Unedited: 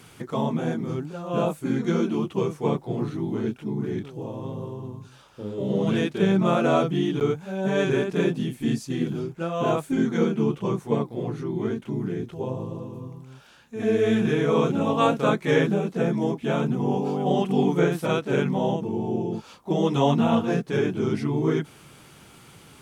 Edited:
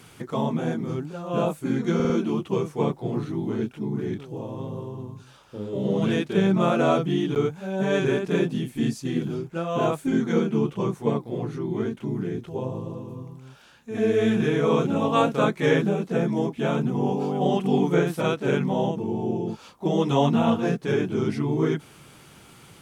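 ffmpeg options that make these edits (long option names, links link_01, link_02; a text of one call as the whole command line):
ffmpeg -i in.wav -filter_complex "[0:a]asplit=4[link_01][link_02][link_03][link_04];[link_01]atrim=end=2.002[link_05];[link_02]atrim=start=1.948:end=2.002[link_06];[link_03]atrim=start=1.948:end=2.002[link_07];[link_04]atrim=start=1.948[link_08];[link_05][link_06]acrossfade=duration=0.004:curve1=hsin:curve2=hsin[link_09];[link_09][link_07]acrossfade=duration=0.004:curve1=hsin:curve2=hsin[link_10];[link_10][link_08]acrossfade=duration=0.004:curve1=hsin:curve2=hsin" out.wav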